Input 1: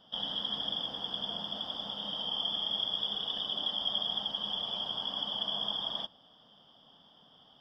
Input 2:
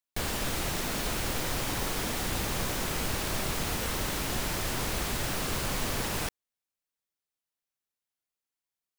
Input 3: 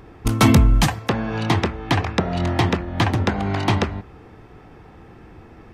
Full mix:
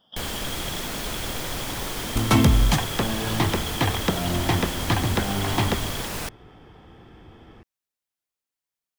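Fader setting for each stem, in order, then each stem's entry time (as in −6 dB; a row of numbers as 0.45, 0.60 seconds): −3.5, +1.0, −4.0 decibels; 0.00, 0.00, 1.90 seconds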